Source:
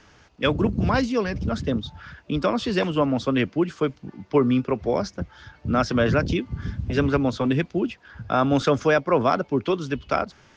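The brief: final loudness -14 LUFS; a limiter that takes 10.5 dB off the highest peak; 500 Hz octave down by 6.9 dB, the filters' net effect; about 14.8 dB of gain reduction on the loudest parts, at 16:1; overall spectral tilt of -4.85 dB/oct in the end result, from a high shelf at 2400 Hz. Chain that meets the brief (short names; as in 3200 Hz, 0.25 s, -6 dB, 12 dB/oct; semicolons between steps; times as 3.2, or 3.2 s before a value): bell 500 Hz -9 dB; high shelf 2400 Hz +4 dB; compressor 16:1, threshold -33 dBFS; gain +26 dB; limiter -3.5 dBFS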